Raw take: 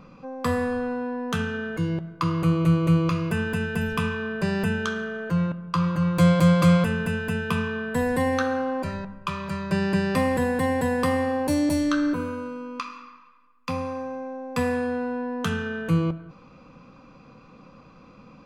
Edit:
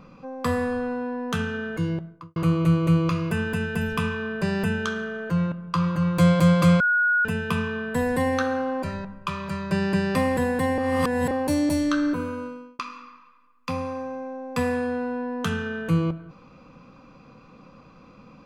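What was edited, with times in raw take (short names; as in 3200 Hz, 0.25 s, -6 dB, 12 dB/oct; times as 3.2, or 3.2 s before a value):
1.88–2.36 studio fade out
6.8–7.25 bleep 1450 Hz -17.5 dBFS
10.78–11.31 reverse
12.44–12.79 fade out linear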